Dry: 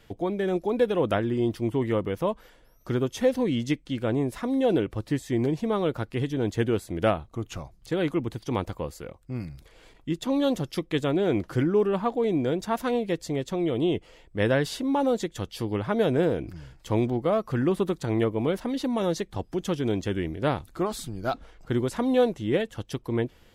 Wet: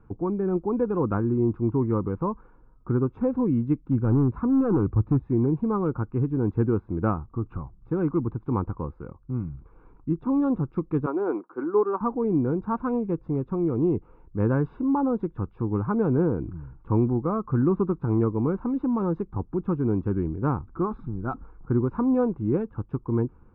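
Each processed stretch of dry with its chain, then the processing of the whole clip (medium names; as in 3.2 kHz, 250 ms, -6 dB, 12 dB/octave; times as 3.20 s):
3.85–5.27 s: high-pass 48 Hz 24 dB/octave + bass shelf 160 Hz +10.5 dB + hard clipper -19.5 dBFS
11.06–12.01 s: high-pass 300 Hz 24 dB/octave + dynamic bell 1 kHz, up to +7 dB, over -39 dBFS, Q 0.71 + upward expansion, over -36 dBFS
whole clip: low-pass 1.2 kHz 24 dB/octave; comb 0.8 ms, depth 78%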